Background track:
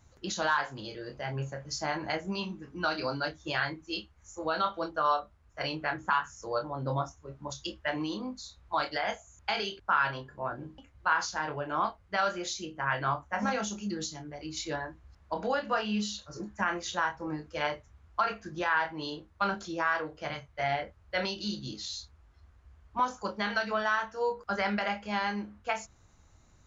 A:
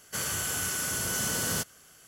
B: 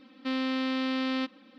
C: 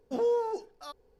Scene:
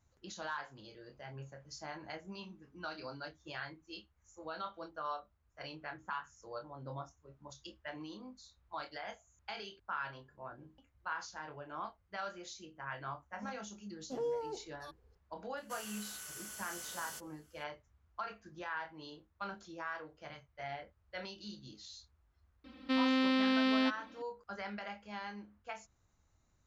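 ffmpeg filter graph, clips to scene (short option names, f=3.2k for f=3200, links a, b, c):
-filter_complex "[0:a]volume=-13dB[a];[1:a]highpass=f=700:p=1[b];[3:a]atrim=end=1.19,asetpts=PTS-STARTPTS,volume=-9.5dB,afade=t=in:d=0.004:c=hsin,afade=t=out:st=1.186:d=0.004:c=hsin,adelay=13990[c];[b]atrim=end=2.07,asetpts=PTS-STARTPTS,volume=-16dB,afade=t=in:d=0.004:c=hsin,afade=t=out:st=2.066:d=0.004:c=hsin,adelay=15570[d];[2:a]atrim=end=1.58,asetpts=PTS-STARTPTS,volume=-0.5dB,afade=t=in:d=0.004:c=hsin,afade=t=out:st=1.576:d=0.004:c=hsin,adelay=22640[e];[a][c][d][e]amix=inputs=4:normalize=0"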